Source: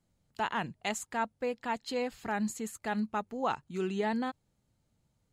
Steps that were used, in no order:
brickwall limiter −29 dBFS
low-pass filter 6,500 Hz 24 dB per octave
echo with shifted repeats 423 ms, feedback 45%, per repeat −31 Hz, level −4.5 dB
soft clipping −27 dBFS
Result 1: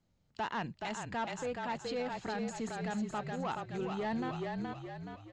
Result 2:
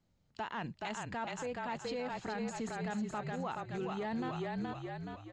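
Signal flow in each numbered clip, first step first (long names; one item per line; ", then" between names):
soft clipping, then echo with shifted repeats, then brickwall limiter, then low-pass filter
echo with shifted repeats, then brickwall limiter, then soft clipping, then low-pass filter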